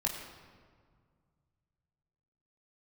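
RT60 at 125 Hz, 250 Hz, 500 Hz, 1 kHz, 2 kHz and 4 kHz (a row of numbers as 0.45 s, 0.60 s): 3.3 s, 2.4 s, 2.0 s, 1.8 s, 1.4 s, 1.1 s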